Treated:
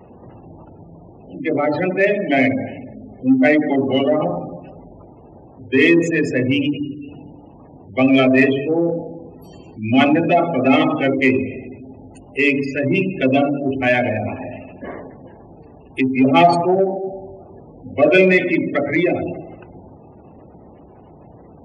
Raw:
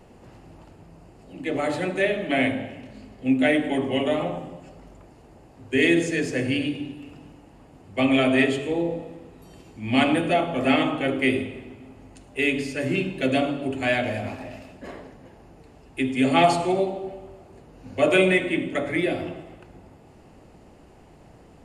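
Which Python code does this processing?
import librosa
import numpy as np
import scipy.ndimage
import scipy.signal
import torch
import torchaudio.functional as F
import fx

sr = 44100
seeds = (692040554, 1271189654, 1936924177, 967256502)

p1 = fx.spec_gate(x, sr, threshold_db=-20, keep='strong')
p2 = 10.0 ** (-20.0 / 20.0) * np.tanh(p1 / 10.0 ** (-20.0 / 20.0))
p3 = p1 + (p2 * librosa.db_to_amplitude(-8.0))
p4 = scipy.signal.sosfilt(scipy.signal.butter(2, 69.0, 'highpass', fs=sr, output='sos'), p3)
y = p4 * librosa.db_to_amplitude(5.0)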